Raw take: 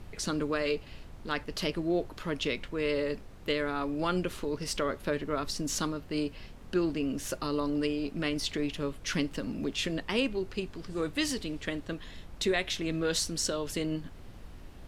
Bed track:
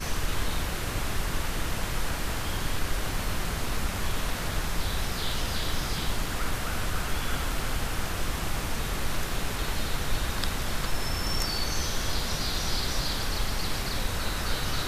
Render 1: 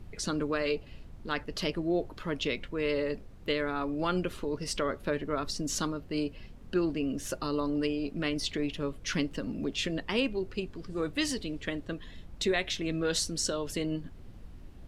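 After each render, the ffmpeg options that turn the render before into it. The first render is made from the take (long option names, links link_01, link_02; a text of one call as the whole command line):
ffmpeg -i in.wav -af "afftdn=noise_reduction=7:noise_floor=-48" out.wav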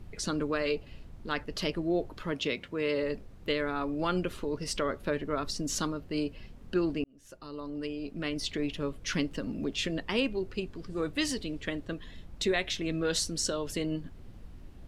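ffmpeg -i in.wav -filter_complex "[0:a]asettb=1/sr,asplit=3[link_01][link_02][link_03];[link_01]atrim=end=2.324[link_04];[link_02]atrim=start=2.32:end=3.03,asetpts=PTS-STARTPTS,afade=type=in:duration=0.004:curve=qsin,afade=type=out:start_time=0.706:duration=0.004:curve=qsin,highpass=97[link_05];[link_03]atrim=start=3.026[link_06];[link_04][link_05]acrossfade=duration=0.004:curve1=hsin:curve2=qsin[link_07];[link_07][link_06]acrossfade=duration=0.004:curve1=qsin:curve2=hsin,asplit=2[link_08][link_09];[link_08]atrim=end=7.04,asetpts=PTS-STARTPTS,afade=type=out:start_time=7.036:duration=0.004:curve=hsin[link_10];[link_09]atrim=start=7.04,asetpts=PTS-STARTPTS,afade=type=in:duration=1.64[link_11];[link_10][link_11]concat=n=2:v=0:a=1" out.wav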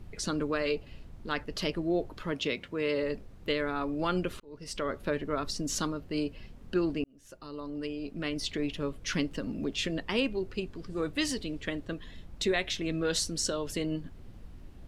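ffmpeg -i in.wav -filter_complex "[0:a]asplit=2[link_01][link_02];[link_01]atrim=end=4.4,asetpts=PTS-STARTPTS,afade=type=out:start_time=4.396:duration=0.004:curve=hsin[link_03];[link_02]atrim=start=4.4,asetpts=PTS-STARTPTS,afade=type=in:duration=0.57[link_04];[link_03][link_04]concat=n=2:v=0:a=1" out.wav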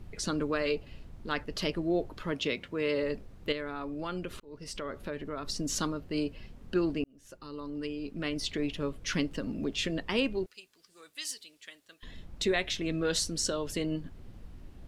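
ffmpeg -i in.wav -filter_complex "[0:a]asettb=1/sr,asplit=3[link_01][link_02][link_03];[link_01]atrim=end=3.524[link_04];[link_02]atrim=start=3.52:end=5.48,asetpts=PTS-STARTPTS,afade=type=in:duration=0.004:curve=qsin,afade=type=out:start_time=1.956:duration=0.004:curve=qsin,acompressor=threshold=-37dB:ratio=2:attack=3.2:release=140:knee=1:detection=peak[link_05];[link_03]atrim=start=5.476[link_06];[link_04][link_05]acrossfade=duration=0.004:curve1=hsin:curve2=qsin[link_07];[link_07][link_06]acrossfade=duration=0.004:curve1=qsin:curve2=hsin,asettb=1/sr,asplit=3[link_08][link_09][link_10];[link_08]atrim=end=7.354[link_11];[link_09]atrim=start=7.35:end=8.16,asetpts=PTS-STARTPTS,afade=type=in:duration=0.004:curve=qsin,afade=type=out:start_time=0.806:duration=0.004:curve=qsin,equalizer=frequency=660:width_type=o:width=0.25:gain=-11.5[link_12];[link_10]atrim=start=8.156[link_13];[link_11][link_12]acrossfade=duration=0.004:curve1=hsin:curve2=qsin[link_14];[link_14][link_13]acrossfade=duration=0.004:curve1=qsin:curve2=hsin,asettb=1/sr,asplit=3[link_15][link_16][link_17];[link_15]atrim=end=10.464[link_18];[link_16]atrim=start=10.46:end=12.03,asetpts=PTS-STARTPTS,afade=type=in:duration=0.004:curve=qsin,afade=type=out:start_time=1.566:duration=0.004:curve=qsin,aderivative[link_19];[link_17]atrim=start=12.026[link_20];[link_18][link_19]acrossfade=duration=0.004:curve1=hsin:curve2=qsin[link_21];[link_21][link_20]acrossfade=duration=0.004:curve1=qsin:curve2=hsin" out.wav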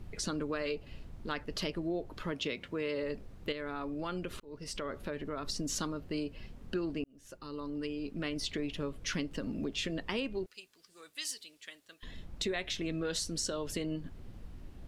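ffmpeg -i in.wav -af "acompressor=threshold=-33dB:ratio=3" out.wav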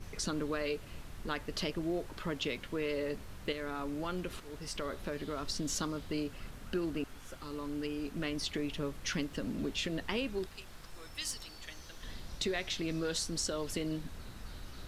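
ffmpeg -i in.wav -i bed.wav -filter_complex "[1:a]volume=-22dB[link_01];[0:a][link_01]amix=inputs=2:normalize=0" out.wav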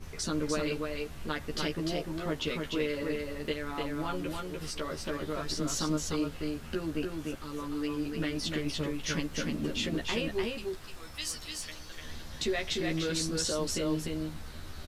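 ffmpeg -i in.wav -filter_complex "[0:a]asplit=2[link_01][link_02];[link_02]adelay=13,volume=-2dB[link_03];[link_01][link_03]amix=inputs=2:normalize=0,asplit=2[link_04][link_05];[link_05]aecho=0:1:298:0.668[link_06];[link_04][link_06]amix=inputs=2:normalize=0" out.wav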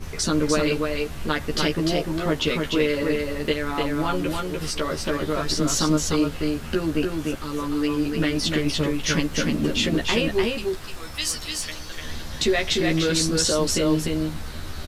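ffmpeg -i in.wav -af "volume=10dB" out.wav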